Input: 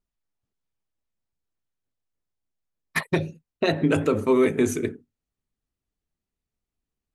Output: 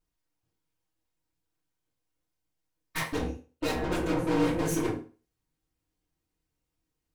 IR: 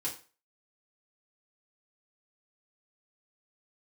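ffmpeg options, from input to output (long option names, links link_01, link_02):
-filter_complex "[0:a]asplit=3[link_01][link_02][link_03];[link_01]afade=type=out:start_time=3.11:duration=0.02[link_04];[link_02]aeval=exprs='val(0)*sin(2*PI*89*n/s)':channel_layout=same,afade=type=in:start_time=3.11:duration=0.02,afade=type=out:start_time=4.74:duration=0.02[link_05];[link_03]afade=type=in:start_time=4.74:duration=0.02[link_06];[link_04][link_05][link_06]amix=inputs=3:normalize=0,aeval=exprs='(tanh(56.2*val(0)+0.65)-tanh(0.65))/56.2':channel_layout=same[link_07];[1:a]atrim=start_sample=2205[link_08];[link_07][link_08]afir=irnorm=-1:irlink=0,volume=6dB"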